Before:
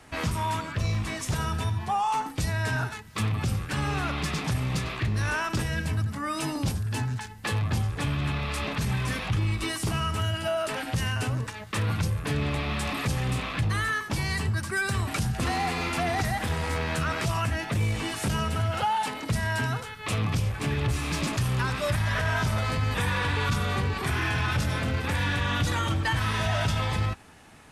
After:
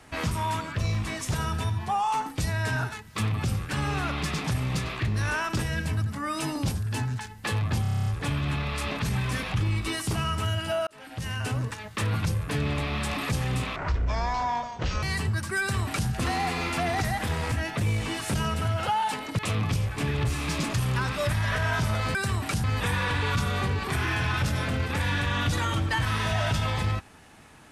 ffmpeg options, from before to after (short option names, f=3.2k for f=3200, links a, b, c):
-filter_complex "[0:a]asplit=16[a][b][c][d][e][f][g][h][i][j][k][l][m][n][o][p];[a]atrim=end=7.852[q];[b]atrim=start=7.818:end=7.852[r];[c]atrim=start=7.818:end=7.852[s];[d]atrim=start=7.818:end=7.852[t];[e]atrim=start=7.818:end=7.852[u];[f]atrim=start=7.818:end=7.852[v];[g]atrim=start=7.818:end=7.852[w];[h]atrim=start=7.818:end=7.852[x];[i]atrim=start=7.818:end=10.63,asetpts=PTS-STARTPTS,afade=t=out:st=2.808:d=0.004:c=hsin[y];[j]atrim=start=10.63:end=13.524,asetpts=PTS-STARTPTS,afade=t=in:d=0.69[z];[k]atrim=start=13.52:end=14.23,asetpts=PTS-STARTPTS,asetrate=24696,aresample=44100,atrim=end_sample=55912,asetpts=PTS-STARTPTS[aa];[l]atrim=start=14.226:end=16.722[ab];[m]atrim=start=17.458:end=19.332[ac];[n]atrim=start=20.018:end=22.782[ad];[o]atrim=start=14.798:end=15.292[ae];[p]atrim=start=22.778[af];[q][r]acrossfade=d=0.004:c1=hsin:c2=hsin[ag];[ag][s]acrossfade=d=0.004:c1=hsin:c2=hsin[ah];[ah][t]acrossfade=d=0.004:c1=hsin:c2=hsin[ai];[ai][u]acrossfade=d=0.004:c1=hsin:c2=hsin[aj];[aj][v]acrossfade=d=0.004:c1=hsin:c2=hsin[ak];[ak][w]acrossfade=d=0.004:c1=hsin:c2=hsin[al];[al][x]acrossfade=d=0.004:c1=hsin:c2=hsin[am];[y][z]concat=n=2:v=0:a=1[an];[am][an]acrossfade=d=0.004:c1=hsin:c2=hsin[ao];[ao][aa]acrossfade=d=0.004:c1=hsin:c2=hsin[ap];[ap][ab]acrossfade=d=0.004:c1=hsin:c2=hsin[aq];[aq][ac]acrossfade=d=0.004:c1=hsin:c2=hsin[ar];[ar][ad]acrossfade=d=0.004:c1=hsin:c2=hsin[as];[as][ae]acrossfade=d=0.004:c1=hsin:c2=hsin[at];[at][af]acrossfade=d=0.004:c1=hsin:c2=hsin"